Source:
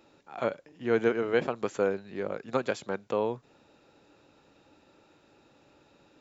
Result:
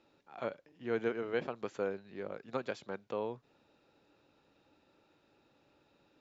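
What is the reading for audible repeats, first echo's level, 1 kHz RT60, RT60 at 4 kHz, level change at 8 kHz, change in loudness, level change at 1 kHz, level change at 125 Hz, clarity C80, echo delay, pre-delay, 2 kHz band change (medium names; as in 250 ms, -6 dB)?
no echo, no echo, no reverb, no reverb, no reading, -8.5 dB, -8.5 dB, -8.5 dB, no reverb, no echo, no reverb, -8.0 dB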